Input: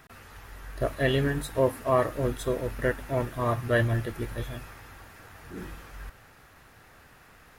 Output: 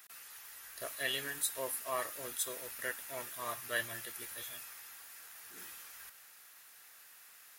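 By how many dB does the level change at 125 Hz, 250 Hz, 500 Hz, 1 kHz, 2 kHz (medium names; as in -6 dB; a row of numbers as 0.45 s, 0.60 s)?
-29.5 dB, -22.5 dB, -17.0 dB, -11.0 dB, -6.5 dB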